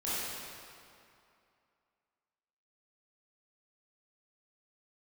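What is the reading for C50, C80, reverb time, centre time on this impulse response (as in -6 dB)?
-5.5 dB, -3.0 dB, 2.5 s, 175 ms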